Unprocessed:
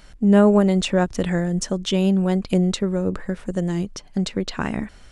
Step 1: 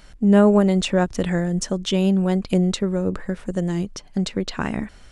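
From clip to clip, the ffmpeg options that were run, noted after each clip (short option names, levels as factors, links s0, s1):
-af anull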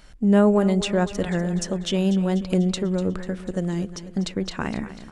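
-af "aecho=1:1:246|492|738|984|1230|1476:0.2|0.118|0.0695|0.041|0.0242|0.0143,volume=0.75"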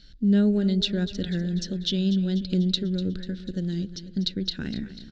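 -af "firequalizer=gain_entry='entry(260,0);entry(690,-17);entry(1100,-27);entry(1500,-4);entry(2300,-10);entry(3900,11);entry(9400,-27)':delay=0.05:min_phase=1,volume=0.794"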